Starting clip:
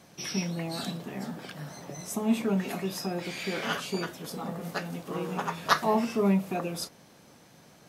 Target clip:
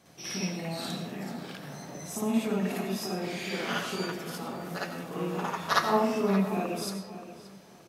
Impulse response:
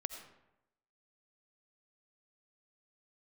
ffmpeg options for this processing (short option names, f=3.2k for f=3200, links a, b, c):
-filter_complex "[0:a]bandreject=f=50:t=h:w=6,bandreject=f=100:t=h:w=6,bandreject=f=150:t=h:w=6,bandreject=f=200:t=h:w=6,asplit=2[a][b];[b]adelay=576,lowpass=f=2.7k:p=1,volume=-12.5dB,asplit=2[c][d];[d]adelay=576,lowpass=f=2.7k:p=1,volume=0.23,asplit=2[e][f];[f]adelay=576,lowpass=f=2.7k:p=1,volume=0.23[g];[a][c][e][g]amix=inputs=4:normalize=0,asplit=2[h][i];[1:a]atrim=start_sample=2205,adelay=56[j];[i][j]afir=irnorm=-1:irlink=0,volume=5.5dB[k];[h][k]amix=inputs=2:normalize=0,volume=-6dB"